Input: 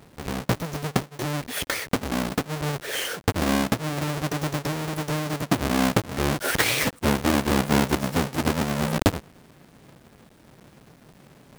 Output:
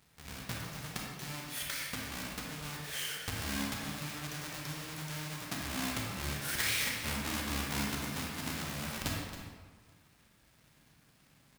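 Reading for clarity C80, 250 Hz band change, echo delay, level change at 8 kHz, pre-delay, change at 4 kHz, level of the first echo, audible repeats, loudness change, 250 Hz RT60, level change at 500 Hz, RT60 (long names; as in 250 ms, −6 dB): 2.0 dB, −16.0 dB, 273 ms, −7.0 dB, 28 ms, −7.5 dB, −12.0 dB, 1, −11.5 dB, 1.6 s, −19.0 dB, 1.5 s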